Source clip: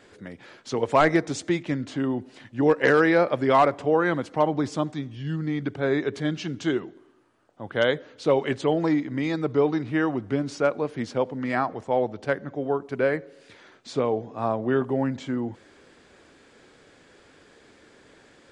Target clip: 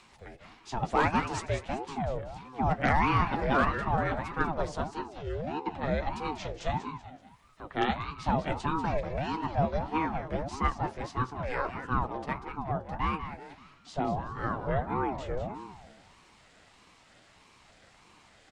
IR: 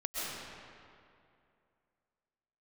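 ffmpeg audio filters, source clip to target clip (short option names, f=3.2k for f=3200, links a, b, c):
-filter_complex "[0:a]acrossover=split=360|1600[a][b][c];[c]acompressor=mode=upward:threshold=-49dB:ratio=2.5[d];[a][b][d]amix=inputs=3:normalize=0,flanger=delay=6.5:depth=6.9:regen=-42:speed=0.66:shape=triangular,asettb=1/sr,asplit=3[e][f][g];[e]atrim=end=12.874[h];[f]atrim=start=12.87:end=13.94,asetpts=PTS-STARTPTS,afade=t=in:d=0.004:c=qsin,afade=t=out:st=1.066:d=0.004:c=qsin,aeval=exprs='0.15*(cos(1*acos(clip(val(0)/0.15,-1,1)))-cos(1*PI/2))+0.00473*(cos(7*acos(clip(val(0)/0.15,-1,1)))-cos(7*PI/2))':c=same[i];[g]atrim=start=13.936[j];[h][i]acrossfade=d=0.004:c1=hsin:c2=qsin[k];[k][j]acrossfade=d=0.004:c1=qsin:c2=hsin,asplit=5[l][m][n][o][p];[m]adelay=191,afreqshift=63,volume=-9.5dB[q];[n]adelay=382,afreqshift=126,volume=-17.7dB[r];[o]adelay=573,afreqshift=189,volume=-25.9dB[s];[p]adelay=764,afreqshift=252,volume=-34dB[t];[l][q][r][s][t]amix=inputs=5:normalize=0,aeval=exprs='val(0)*sin(2*PI*430*n/s+430*0.5/1.6*sin(2*PI*1.6*n/s))':c=same"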